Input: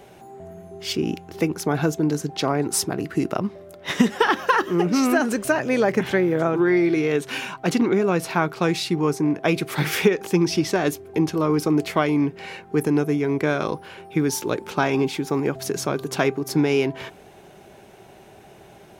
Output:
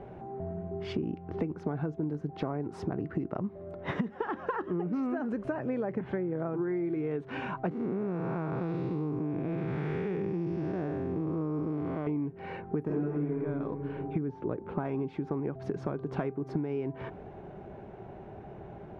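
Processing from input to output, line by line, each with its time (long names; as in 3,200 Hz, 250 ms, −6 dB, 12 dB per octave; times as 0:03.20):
0:07.71–0:12.07: spectrum smeared in time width 341 ms
0:12.84–0:13.35: thrown reverb, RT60 1.3 s, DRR −10 dB
0:14.18–0:14.85: head-to-tape spacing loss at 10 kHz 29 dB
whole clip: low-pass filter 1,300 Hz 12 dB per octave; low-shelf EQ 210 Hz +7.5 dB; downward compressor 12 to 1, threshold −29 dBFS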